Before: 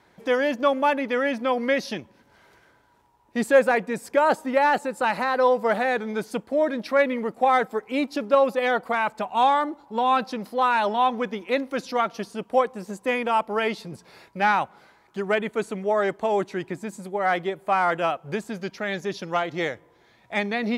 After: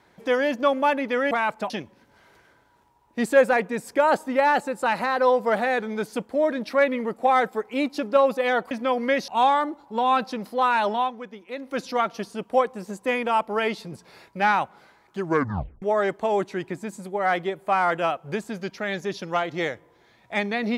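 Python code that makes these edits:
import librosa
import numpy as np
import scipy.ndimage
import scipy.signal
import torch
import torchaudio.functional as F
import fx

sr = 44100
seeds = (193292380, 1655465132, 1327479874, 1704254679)

y = fx.edit(x, sr, fx.swap(start_s=1.31, length_s=0.57, other_s=8.89, other_length_s=0.39),
    fx.fade_down_up(start_s=10.94, length_s=0.83, db=-10.5, fade_s=0.19),
    fx.tape_stop(start_s=15.19, length_s=0.63), tone=tone)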